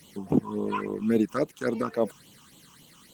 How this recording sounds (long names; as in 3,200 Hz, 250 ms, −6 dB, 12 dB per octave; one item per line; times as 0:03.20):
phaser sweep stages 8, 3.6 Hz, lowest notch 550–1,700 Hz
a quantiser's noise floor 12 bits, dither none
Opus